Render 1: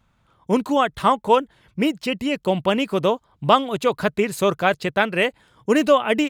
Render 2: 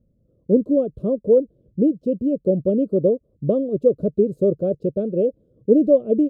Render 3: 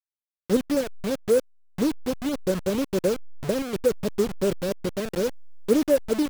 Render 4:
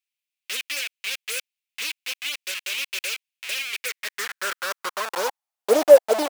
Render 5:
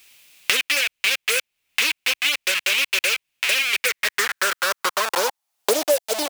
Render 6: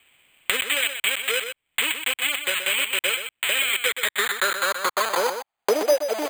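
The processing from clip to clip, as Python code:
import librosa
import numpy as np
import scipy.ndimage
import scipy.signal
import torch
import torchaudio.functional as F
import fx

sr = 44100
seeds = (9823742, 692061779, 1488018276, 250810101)

y1 = scipy.signal.sosfilt(scipy.signal.ellip(4, 1.0, 40, 540.0, 'lowpass', fs=sr, output='sos'), x)
y1 = fx.low_shelf(y1, sr, hz=340.0, db=-6.0)
y1 = F.gain(torch.from_numpy(y1), 7.0).numpy()
y2 = fx.delta_hold(y1, sr, step_db=-20.5)
y2 = F.gain(torch.from_numpy(y2), -5.0).numpy()
y3 = fx.filter_sweep_highpass(y2, sr, from_hz=2500.0, to_hz=680.0, start_s=3.68, end_s=5.68, q=3.7)
y3 = F.gain(torch.from_numpy(y3), 5.5).numpy()
y4 = fx.band_squash(y3, sr, depth_pct=100)
y4 = F.gain(torch.from_numpy(y4), 6.0).numpy()
y5 = np.repeat(scipy.signal.resample_poly(y4, 1, 8), 8)[:len(y4)]
y5 = y5 + 10.0 ** (-8.5 / 20.0) * np.pad(y5, (int(125 * sr / 1000.0), 0))[:len(y5)]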